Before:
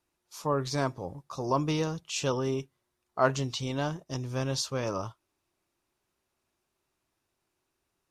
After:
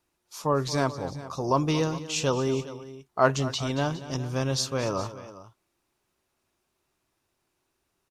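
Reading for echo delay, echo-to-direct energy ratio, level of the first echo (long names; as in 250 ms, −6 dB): 227 ms, −13.0 dB, −15.5 dB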